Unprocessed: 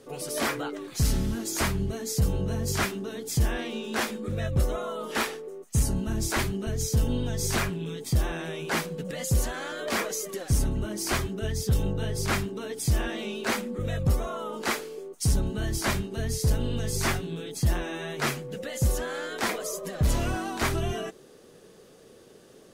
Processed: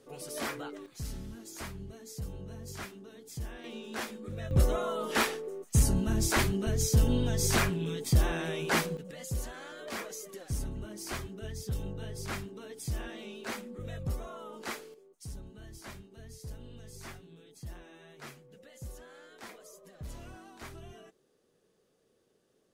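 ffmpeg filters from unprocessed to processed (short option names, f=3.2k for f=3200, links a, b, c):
-af "asetnsamples=n=441:p=0,asendcmd='0.86 volume volume -15dB;3.64 volume volume -9dB;4.51 volume volume 0dB;8.97 volume volume -10.5dB;14.94 volume volume -19.5dB',volume=-8dB"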